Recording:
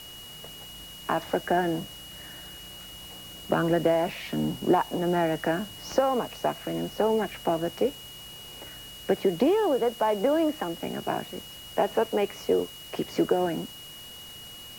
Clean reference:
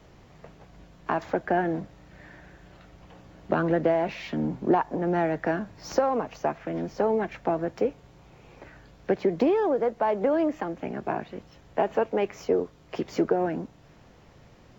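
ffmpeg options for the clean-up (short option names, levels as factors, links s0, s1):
-af "bandreject=f=2900:w=30,afwtdn=0.004"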